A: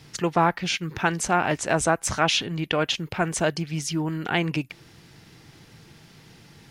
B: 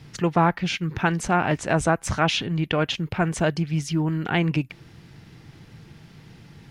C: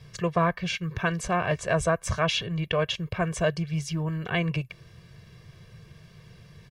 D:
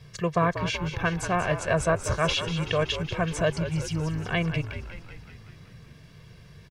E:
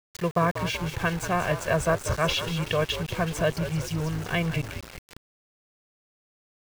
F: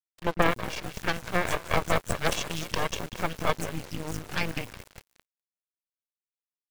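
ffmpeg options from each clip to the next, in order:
-af "bass=f=250:g=6,treble=f=4000:g=-6"
-af "aecho=1:1:1.8:0.92,volume=0.531"
-filter_complex "[0:a]asplit=9[s0][s1][s2][s3][s4][s5][s6][s7][s8];[s1]adelay=189,afreqshift=-54,volume=0.316[s9];[s2]adelay=378,afreqshift=-108,volume=0.195[s10];[s3]adelay=567,afreqshift=-162,volume=0.122[s11];[s4]adelay=756,afreqshift=-216,volume=0.075[s12];[s5]adelay=945,afreqshift=-270,volume=0.0468[s13];[s6]adelay=1134,afreqshift=-324,volume=0.0288[s14];[s7]adelay=1323,afreqshift=-378,volume=0.018[s15];[s8]adelay=1512,afreqshift=-432,volume=0.0111[s16];[s0][s9][s10][s11][s12][s13][s14][s15][s16]amix=inputs=9:normalize=0"
-af "aeval=exprs='val(0)*gte(abs(val(0)),0.0188)':c=same"
-filter_complex "[0:a]acrossover=split=200|5200[s0][s1][s2];[s1]adelay=30[s3];[s2]adelay=270[s4];[s0][s3][s4]amix=inputs=3:normalize=0,aeval=exprs='0.376*(cos(1*acos(clip(val(0)/0.376,-1,1)))-cos(1*PI/2))+0.0531*(cos(3*acos(clip(val(0)/0.376,-1,1)))-cos(3*PI/2))+0.168*(cos(4*acos(clip(val(0)/0.376,-1,1)))-cos(4*PI/2))+0.0106*(cos(7*acos(clip(val(0)/0.376,-1,1)))-cos(7*PI/2))':c=same,acrusher=bits=6:mix=0:aa=0.5"

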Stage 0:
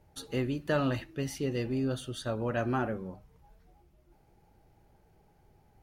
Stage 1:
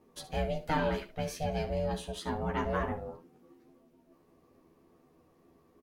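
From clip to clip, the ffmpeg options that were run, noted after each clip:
-filter_complex "[0:a]aeval=exprs='val(0)*sin(2*PI*310*n/s)':c=same,asplit=2[s0][s1];[s1]aecho=0:1:12|72:0.668|0.224[s2];[s0][s2]amix=inputs=2:normalize=0"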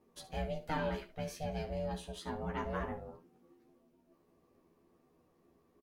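-filter_complex "[0:a]asplit=2[s0][s1];[s1]adelay=17,volume=0.251[s2];[s0][s2]amix=inputs=2:normalize=0,volume=0.501"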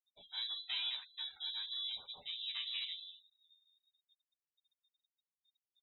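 -af "afftfilt=real='re*gte(hypot(re,im),0.00316)':imag='im*gte(hypot(re,im),0.00316)':win_size=1024:overlap=0.75,lowpass=f=3400:t=q:w=0.5098,lowpass=f=3400:t=q:w=0.6013,lowpass=f=3400:t=q:w=0.9,lowpass=f=3400:t=q:w=2.563,afreqshift=-4000,volume=0.631"

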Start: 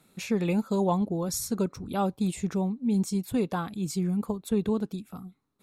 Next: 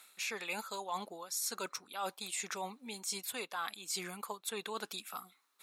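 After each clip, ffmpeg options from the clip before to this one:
-af "highpass=1300,areverse,acompressor=threshold=0.00398:ratio=6,areverse,volume=3.76"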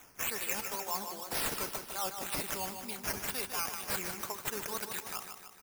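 -af "acrusher=samples=9:mix=1:aa=0.000001:lfo=1:lforange=5.4:lforate=2,aexciter=amount=1.7:drive=8.7:freq=4800,aecho=1:1:152|304|456|608|760|912|1064:0.422|0.232|0.128|0.0702|0.0386|0.0212|0.0117"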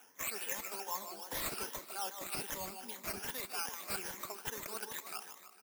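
-filter_complex "[0:a]afftfilt=real='re*pow(10,9/40*sin(2*PI*(1.1*log(max(b,1)*sr/1024/100)/log(2)-(2.5)*(pts-256)/sr)))':imag='im*pow(10,9/40*sin(2*PI*(1.1*log(max(b,1)*sr/1024/100)/log(2)-(2.5)*(pts-256)/sr)))':win_size=1024:overlap=0.75,acrossover=split=190|2300[s0][s1][s2];[s0]acrusher=bits=7:mix=0:aa=0.000001[s3];[s3][s1][s2]amix=inputs=3:normalize=0,volume=0.531"

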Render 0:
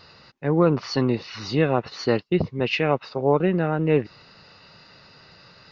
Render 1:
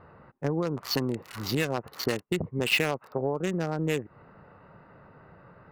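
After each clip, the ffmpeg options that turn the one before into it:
-filter_complex "[0:a]acrossover=split=1600[s0][s1];[s0]acompressor=threshold=0.0501:ratio=12[s2];[s1]acrusher=bits=4:mix=0:aa=0.5[s3];[s2][s3]amix=inputs=2:normalize=0,volume=1.19"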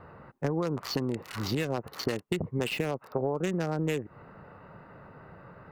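-filter_complex "[0:a]acrossover=split=660|7400[s0][s1][s2];[s0]acompressor=threshold=0.0316:ratio=4[s3];[s1]acompressor=threshold=0.0126:ratio=4[s4];[s2]acompressor=threshold=0.002:ratio=4[s5];[s3][s4][s5]amix=inputs=3:normalize=0,volume=1.41"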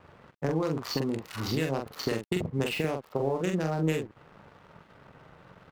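-filter_complex "[0:a]asplit=2[s0][s1];[s1]adelay=44,volume=0.631[s2];[s0][s2]amix=inputs=2:normalize=0,aeval=exprs='sgn(val(0))*max(abs(val(0))-0.00266,0)':c=same"

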